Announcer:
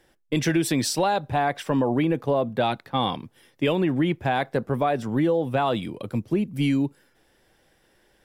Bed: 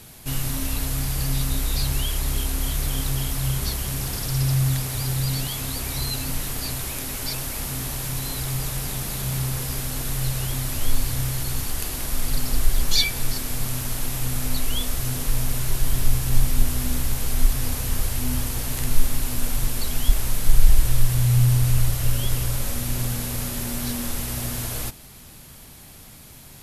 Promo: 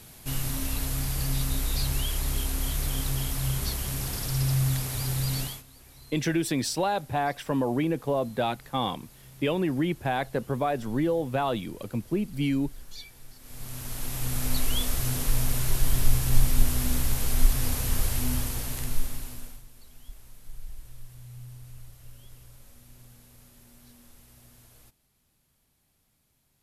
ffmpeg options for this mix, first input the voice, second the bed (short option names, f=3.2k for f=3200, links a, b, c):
-filter_complex "[0:a]adelay=5800,volume=-4dB[a];[1:a]volume=18dB,afade=t=out:st=5.42:d=0.21:silence=0.1,afade=t=in:st=13.39:d=1.18:silence=0.0794328,afade=t=out:st=18.15:d=1.48:silence=0.0595662[b];[a][b]amix=inputs=2:normalize=0"